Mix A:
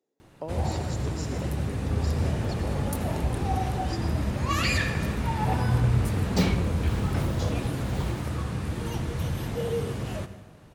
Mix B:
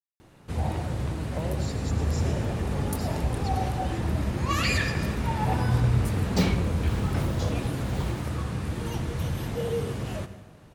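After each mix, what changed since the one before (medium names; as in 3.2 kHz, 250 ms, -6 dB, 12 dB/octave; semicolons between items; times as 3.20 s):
speech: entry +0.95 s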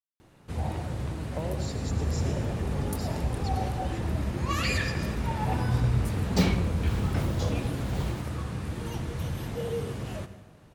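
first sound -3.0 dB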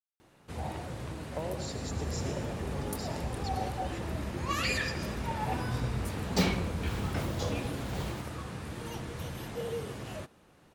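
first sound: send off; master: add bass shelf 220 Hz -8 dB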